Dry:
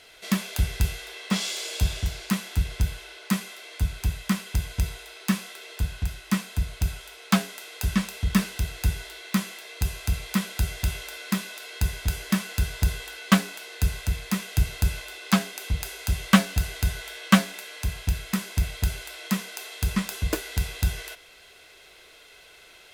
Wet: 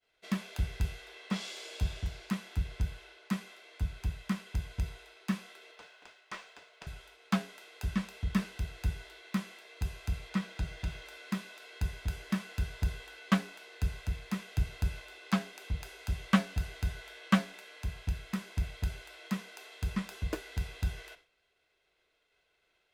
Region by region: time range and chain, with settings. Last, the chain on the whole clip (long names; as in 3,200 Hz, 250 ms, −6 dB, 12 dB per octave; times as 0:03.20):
0:05.71–0:06.87: high-pass filter 430 Hz 24 dB per octave + linearly interpolated sample-rate reduction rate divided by 3×
0:10.29–0:11.06: running median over 3 samples + high-shelf EQ 10,000 Hz −6 dB + comb filter 6.2 ms, depth 36%
whole clip: high-shelf EQ 3,400 Hz −5 dB; downward expander −43 dBFS; high-shelf EQ 7,800 Hz −8.5 dB; level −8 dB